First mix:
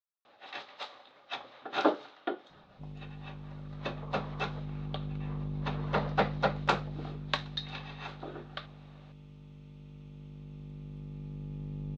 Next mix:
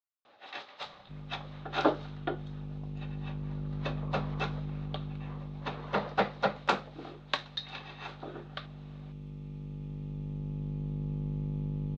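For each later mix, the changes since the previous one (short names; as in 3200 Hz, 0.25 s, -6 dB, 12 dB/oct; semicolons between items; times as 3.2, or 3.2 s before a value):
second sound: entry -1.70 s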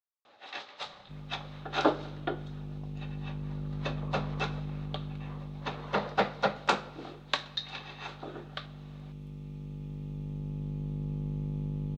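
first sound: send on; master: remove air absorption 79 m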